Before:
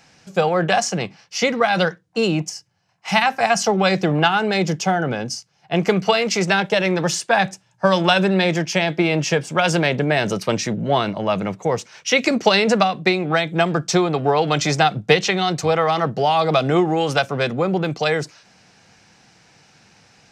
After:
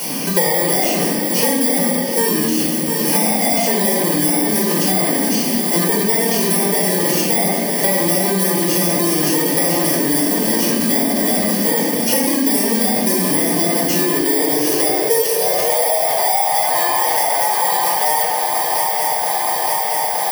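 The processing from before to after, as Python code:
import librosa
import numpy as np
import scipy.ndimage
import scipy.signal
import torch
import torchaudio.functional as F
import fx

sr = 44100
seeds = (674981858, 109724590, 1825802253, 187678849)

p1 = fx.bit_reversed(x, sr, seeds[0], block=32)
p2 = fx.low_shelf(p1, sr, hz=280.0, db=-5.0)
p3 = p2 + fx.echo_swing(p2, sr, ms=920, ratio=3, feedback_pct=70, wet_db=-14, dry=0)
p4 = fx.room_shoebox(p3, sr, seeds[1], volume_m3=760.0, walls='mixed', distance_m=4.7)
p5 = fx.filter_sweep_highpass(p4, sr, from_hz=240.0, to_hz=800.0, start_s=13.94, end_s=16.37, q=4.7)
p6 = scipy.signal.sosfilt(scipy.signal.butter(2, 160.0, 'highpass', fs=sr, output='sos'), p5)
p7 = fx.over_compress(p6, sr, threshold_db=-11.0, ratio=-1.0)
p8 = p6 + (p7 * 10.0 ** (-1.5 / 20.0))
p9 = fx.high_shelf(p8, sr, hz=7000.0, db=6.0)
p10 = fx.band_squash(p9, sr, depth_pct=100)
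y = p10 * 10.0 ** (-14.5 / 20.0)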